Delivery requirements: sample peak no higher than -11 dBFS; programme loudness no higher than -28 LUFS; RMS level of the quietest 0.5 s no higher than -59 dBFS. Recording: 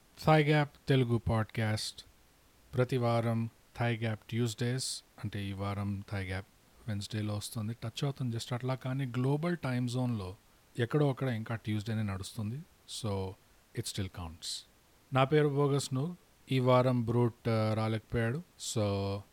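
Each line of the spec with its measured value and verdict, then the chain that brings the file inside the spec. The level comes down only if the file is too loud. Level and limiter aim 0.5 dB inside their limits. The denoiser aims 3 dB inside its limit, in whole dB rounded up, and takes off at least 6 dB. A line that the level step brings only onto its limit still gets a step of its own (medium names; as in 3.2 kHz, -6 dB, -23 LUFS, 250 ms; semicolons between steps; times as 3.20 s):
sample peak -14.0 dBFS: pass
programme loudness -33.0 LUFS: pass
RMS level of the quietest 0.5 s -63 dBFS: pass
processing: none needed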